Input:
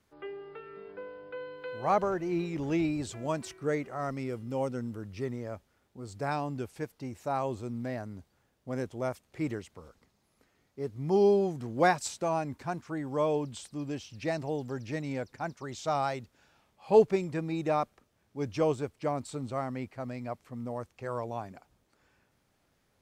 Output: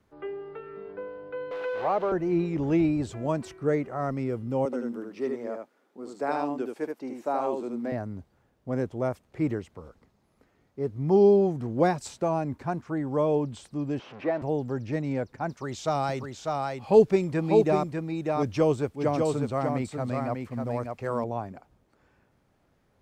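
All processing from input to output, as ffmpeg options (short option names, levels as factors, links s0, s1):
-filter_complex "[0:a]asettb=1/sr,asplit=3[s0][s1][s2];[s0]atrim=end=1.514[s3];[s1]atrim=start=1.51:end=2.12,asetpts=PTS-STARTPTS,afade=t=in:d=0.004:c=qsin,afade=t=out:st=0.606:d=0.004:c=qsin,aeval=exprs='val(0)+0.5*0.0211*sgn(val(0))':c=same,acrossover=split=360 4300:gain=0.141 1 0.0794[s4][s5][s6];[s4][s5][s6]amix=inputs=3:normalize=0[s7];[s2]atrim=start=2.116[s8];[s3][s7]acrossfade=d=0.004:c1=hsin:c2=qsin[s9];[s9][s8]acrossfade=d=0.004:c1=qsin:c2=hsin,asettb=1/sr,asplit=3[s10][s11][s12];[s10]atrim=end=4.654[s13];[s11]atrim=start=4.65:end=7.92,asetpts=PTS-STARTPTS,afade=t=in:d=0.004:c=qsin,afade=t=out:st=3.266:d=0.004:c=qsin,highpass=f=250:w=0.5412,highpass=f=250:w=1.3066,aecho=1:1:76:0.631,atrim=end_sample=144207[s14];[s12]atrim=start=7.916[s15];[s13][s14]acrossfade=d=0.004:c1=hsin:c2=qsin[s16];[s16][s15]acrossfade=d=0.004:c1=qsin:c2=hsin,asettb=1/sr,asplit=3[s17][s18][s19];[s17]atrim=end=13.994[s20];[s18]atrim=start=13.99:end=14.42,asetpts=PTS-STARTPTS,afade=t=in:d=0.004:c=qsin,afade=t=out:st=0.426:d=0.004:c=qsin,aeval=exprs='val(0)+0.5*0.0178*sgn(val(0))':c=same,highpass=340,lowpass=2100[s21];[s19]atrim=start=14.416[s22];[s20][s21]acrossfade=d=0.004:c1=hsin:c2=qsin[s23];[s23][s22]acrossfade=d=0.004:c1=qsin:c2=hsin,asettb=1/sr,asplit=3[s24][s25][s26];[s24]atrim=end=15.494[s27];[s25]atrim=start=15.49:end=21.24,asetpts=PTS-STARTPTS,afade=t=in:d=0.004:c=qsin,afade=t=out:st=5.746:d=0.004:c=qsin,highshelf=f=2000:g=7.5,aecho=1:1:596:0.596,atrim=end_sample=253575[s28];[s26]atrim=start=21.236[s29];[s27][s28]acrossfade=d=0.004:c1=hsin:c2=qsin[s30];[s30][s29]acrossfade=d=0.004:c1=qsin:c2=hsin,highshelf=f=2100:g=-11.5,acrossover=split=490|3000[s31][s32][s33];[s32]acompressor=threshold=0.0251:ratio=6[s34];[s31][s34][s33]amix=inputs=3:normalize=0,volume=2"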